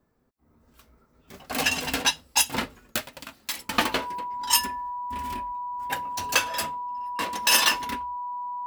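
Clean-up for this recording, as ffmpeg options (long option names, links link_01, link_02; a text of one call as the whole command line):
ffmpeg -i in.wav -af "bandreject=frequency=980:width=30" out.wav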